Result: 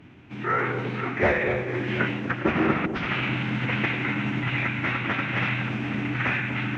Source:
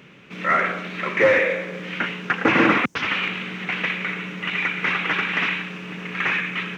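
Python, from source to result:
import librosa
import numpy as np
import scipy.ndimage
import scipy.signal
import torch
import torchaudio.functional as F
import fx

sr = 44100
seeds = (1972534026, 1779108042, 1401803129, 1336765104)

p1 = fx.tilt_eq(x, sr, slope=-2.5)
p2 = fx.rider(p1, sr, range_db=5, speed_s=0.5)
p3 = fx.pitch_keep_formants(p2, sr, semitones=-6.5)
p4 = p3 + fx.echo_alternate(p3, sr, ms=243, hz=860.0, feedback_pct=56, wet_db=-7.0, dry=0)
y = p4 * 10.0 ** (-3.0 / 20.0)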